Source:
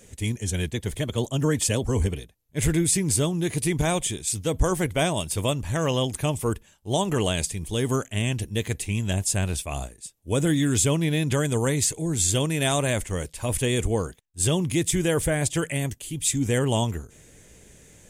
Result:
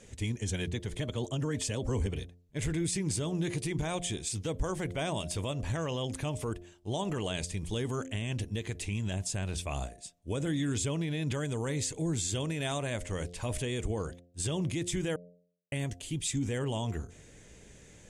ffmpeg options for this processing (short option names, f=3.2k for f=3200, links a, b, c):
-filter_complex "[0:a]asplit=3[a][b][c];[a]atrim=end=15.16,asetpts=PTS-STARTPTS,afade=t=out:st=15.156:d=0.004:c=hsin[d];[b]atrim=start=15.16:end=15.72,asetpts=PTS-STARTPTS,volume=0[e];[c]atrim=start=15.72,asetpts=PTS-STARTPTS,afade=t=in:d=0.004:c=hsin[f];[d][e][f]concat=n=3:v=0:a=1,lowpass=6.9k,bandreject=f=87.87:t=h:w=4,bandreject=f=175.74:t=h:w=4,bandreject=f=263.61:t=h:w=4,bandreject=f=351.48:t=h:w=4,bandreject=f=439.35:t=h:w=4,bandreject=f=527.22:t=h:w=4,bandreject=f=615.09:t=h:w=4,bandreject=f=702.96:t=h:w=4,alimiter=limit=-21.5dB:level=0:latency=1:release=124,volume=-2dB"